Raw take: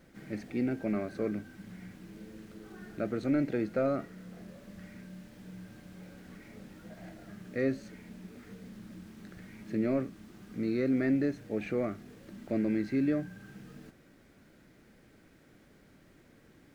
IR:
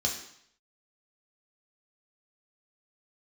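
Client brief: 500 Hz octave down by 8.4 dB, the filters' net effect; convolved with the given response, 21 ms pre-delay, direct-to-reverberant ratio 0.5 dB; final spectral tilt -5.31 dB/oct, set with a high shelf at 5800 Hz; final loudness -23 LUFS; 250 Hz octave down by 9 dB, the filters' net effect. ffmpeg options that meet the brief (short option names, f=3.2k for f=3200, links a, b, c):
-filter_complex "[0:a]equalizer=f=250:t=o:g=-8.5,equalizer=f=500:t=o:g=-8,highshelf=f=5.8k:g=5.5,asplit=2[a][b];[1:a]atrim=start_sample=2205,adelay=21[c];[b][c]afir=irnorm=-1:irlink=0,volume=-7dB[d];[a][d]amix=inputs=2:normalize=0,volume=14.5dB"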